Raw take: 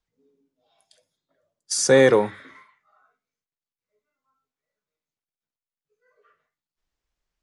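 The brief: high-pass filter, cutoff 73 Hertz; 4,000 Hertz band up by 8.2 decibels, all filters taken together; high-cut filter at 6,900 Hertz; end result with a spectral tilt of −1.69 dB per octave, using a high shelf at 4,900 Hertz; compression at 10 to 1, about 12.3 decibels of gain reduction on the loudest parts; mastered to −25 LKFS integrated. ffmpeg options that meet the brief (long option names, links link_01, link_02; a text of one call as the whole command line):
ffmpeg -i in.wav -af "highpass=73,lowpass=6900,equalizer=frequency=4000:width_type=o:gain=7,highshelf=frequency=4900:gain=8,acompressor=threshold=-22dB:ratio=10,volume=1dB" out.wav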